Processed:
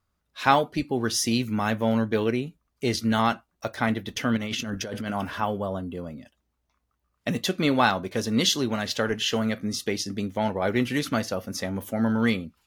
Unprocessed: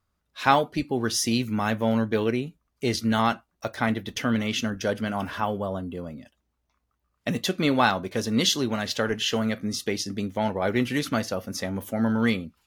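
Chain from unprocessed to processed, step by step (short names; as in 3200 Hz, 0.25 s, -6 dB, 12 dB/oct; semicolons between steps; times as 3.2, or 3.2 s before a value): 4.37–5.11 negative-ratio compressor -31 dBFS, ratio -1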